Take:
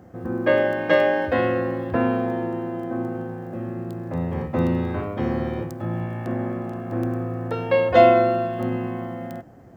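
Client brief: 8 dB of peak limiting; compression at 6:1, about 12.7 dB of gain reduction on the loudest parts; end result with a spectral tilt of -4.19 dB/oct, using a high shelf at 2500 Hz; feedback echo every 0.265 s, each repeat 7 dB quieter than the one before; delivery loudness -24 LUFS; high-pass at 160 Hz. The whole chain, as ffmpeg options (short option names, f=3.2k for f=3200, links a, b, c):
-af "highpass=160,highshelf=f=2.5k:g=4.5,acompressor=threshold=-22dB:ratio=6,alimiter=limit=-20dB:level=0:latency=1,aecho=1:1:265|530|795|1060|1325:0.447|0.201|0.0905|0.0407|0.0183,volume=5dB"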